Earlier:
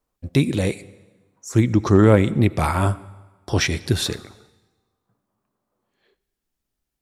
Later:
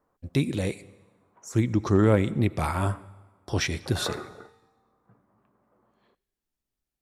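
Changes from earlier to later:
speech -6.5 dB; background +9.5 dB

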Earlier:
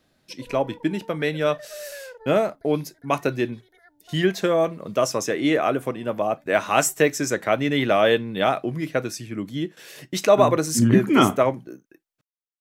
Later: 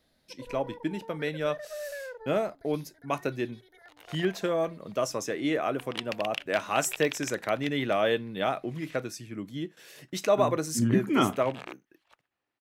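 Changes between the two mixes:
speech -7.5 dB; second sound: unmuted

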